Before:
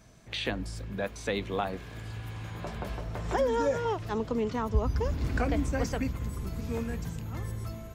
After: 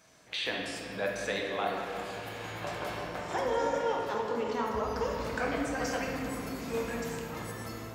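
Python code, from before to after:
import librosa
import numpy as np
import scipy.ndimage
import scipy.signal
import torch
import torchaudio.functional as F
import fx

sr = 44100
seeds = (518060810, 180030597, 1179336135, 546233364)

y = fx.highpass(x, sr, hz=650.0, slope=6)
y = fx.rider(y, sr, range_db=3, speed_s=0.5)
y = fx.room_shoebox(y, sr, seeds[0], volume_m3=150.0, walls='hard', distance_m=0.56)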